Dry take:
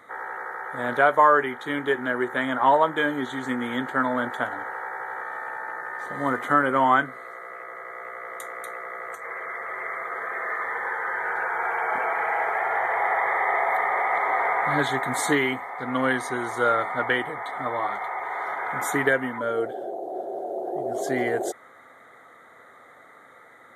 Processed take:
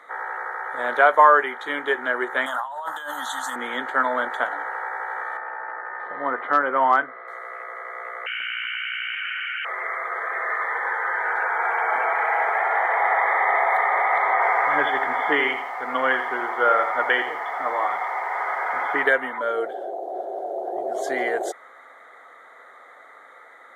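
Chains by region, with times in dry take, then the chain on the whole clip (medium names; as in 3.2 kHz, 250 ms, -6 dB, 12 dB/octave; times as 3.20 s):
2.46–3.56 s: RIAA curve recording + compressor with a negative ratio -29 dBFS + static phaser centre 960 Hz, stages 4
5.37–7.28 s: distance through air 450 m + hard clipper -10.5 dBFS
8.26–9.65 s: frequency inversion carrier 3.5 kHz + level flattener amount 100%
14.33–19.03 s: brick-wall FIR low-pass 3.5 kHz + bit-crushed delay 83 ms, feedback 35%, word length 8-bit, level -9 dB
whole clip: high-pass 500 Hz 12 dB/octave; treble shelf 7.9 kHz -11 dB; trim +4 dB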